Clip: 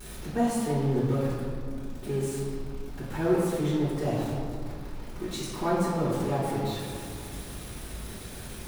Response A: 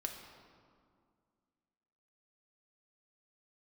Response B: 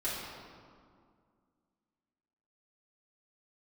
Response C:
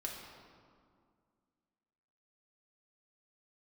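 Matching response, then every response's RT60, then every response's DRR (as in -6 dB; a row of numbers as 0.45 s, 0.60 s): B; 2.1 s, 2.1 s, 2.1 s; 2.0 dB, -11.0 dB, -2.0 dB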